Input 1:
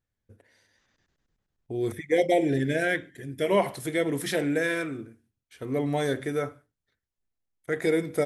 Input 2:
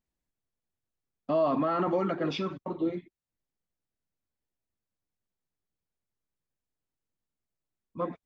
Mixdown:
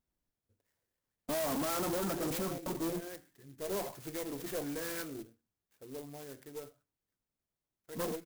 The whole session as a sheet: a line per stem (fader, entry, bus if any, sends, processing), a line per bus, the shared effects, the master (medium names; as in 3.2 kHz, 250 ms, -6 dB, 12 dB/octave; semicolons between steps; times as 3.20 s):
3.09 s -16.5 dB -> 3.83 s -5.5 dB -> 5.17 s -5.5 dB -> 5.60 s -15 dB, 0.20 s, no send, flange 0.51 Hz, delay 2.5 ms, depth 3.8 ms, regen -88%; sweeping bell 1.4 Hz 360–4200 Hz +8 dB
+2.5 dB, 0.00 s, no send, none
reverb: none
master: valve stage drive 32 dB, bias 0.4; sampling jitter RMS 0.1 ms